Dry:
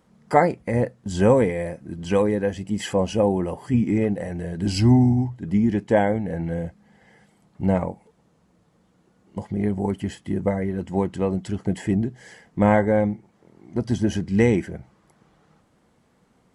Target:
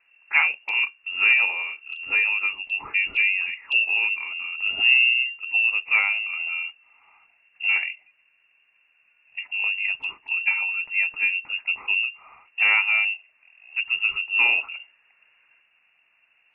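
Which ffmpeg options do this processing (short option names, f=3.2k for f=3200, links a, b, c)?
-filter_complex "[0:a]acrossover=split=140|410|2200[a][b][c][d];[c]aeval=exprs='clip(val(0),-1,0.188)':c=same[e];[a][b][e][d]amix=inputs=4:normalize=0,asettb=1/sr,asplit=3[f][g][h];[f]atrim=end=13.874[i];[g]atrim=start=13.87:end=14.45,asetpts=PTS-STARTPTS,afade=t=in:d=0.004:c=qsin,afade=t=out:st=0.576:d=0.004:c=qsin,equalizer=f=2.3k:w=5.4:g=-8[j];[h]atrim=start=14.446[k];[i][j]acrossfade=d=0.004:c1=hsin:c2=qsin[l];[l][k]acrossfade=d=0.004:c1=qsin:c2=hsin,lowpass=f=2.5k:t=q:w=0.5098,lowpass=f=2.5k:t=q:w=0.6013,lowpass=f=2.5k:t=q:w=0.9,lowpass=f=2.5k:t=q:w=2.563,afreqshift=-2900,asettb=1/sr,asplit=3[m][n][o];[m]atrim=end=10.294[p];[n]atrim=start=10.29:end=11.3,asetpts=PTS-STARTPTS,afade=t=in:d=0.004:c=qsin,afade=t=out:st=1.006:d=0.004:c=qsin,aecho=1:1:6.6:0.48,atrim=end_sample=44541[q];[o]atrim=start=11.296[r];[p][q]acrossfade=d=0.004:c1=hsin:c2=qsin[s];[s][r]acrossfade=d=0.004:c1=qsin:c2=hsin,volume=-2dB" -ar 22050 -c:a aac -b:a 32k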